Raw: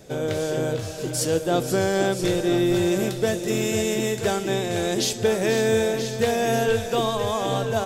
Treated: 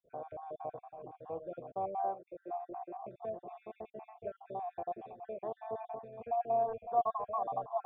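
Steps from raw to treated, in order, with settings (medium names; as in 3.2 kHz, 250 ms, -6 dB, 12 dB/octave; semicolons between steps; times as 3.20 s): random holes in the spectrogram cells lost 49%; 2.01–3.06 s: three-band isolator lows -12 dB, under 240 Hz, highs -21 dB, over 2.3 kHz; cascade formant filter a; trim +2 dB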